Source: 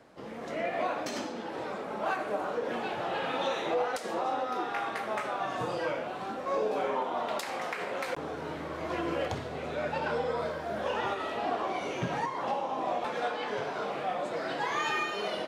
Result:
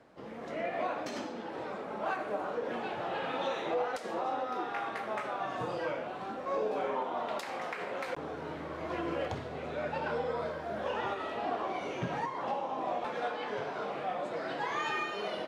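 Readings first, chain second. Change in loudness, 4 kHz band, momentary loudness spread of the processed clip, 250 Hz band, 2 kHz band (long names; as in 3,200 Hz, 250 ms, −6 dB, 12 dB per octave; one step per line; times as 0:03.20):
−3.0 dB, −5.0 dB, 6 LU, −2.5 dB, −3.5 dB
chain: high-shelf EQ 5,100 Hz −7.5 dB
level −2.5 dB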